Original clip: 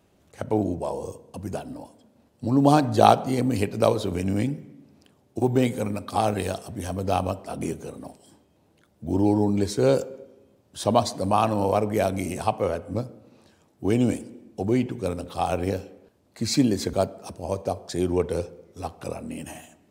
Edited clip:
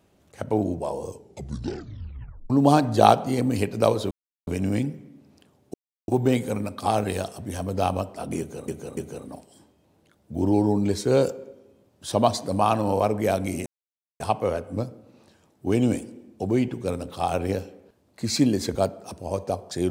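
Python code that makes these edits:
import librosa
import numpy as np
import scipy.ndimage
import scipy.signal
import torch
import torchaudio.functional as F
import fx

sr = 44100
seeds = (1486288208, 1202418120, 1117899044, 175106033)

y = fx.edit(x, sr, fx.tape_stop(start_s=1.08, length_s=1.42),
    fx.insert_silence(at_s=4.11, length_s=0.36),
    fx.insert_silence(at_s=5.38, length_s=0.34),
    fx.repeat(start_s=7.69, length_s=0.29, count=3),
    fx.insert_silence(at_s=12.38, length_s=0.54), tone=tone)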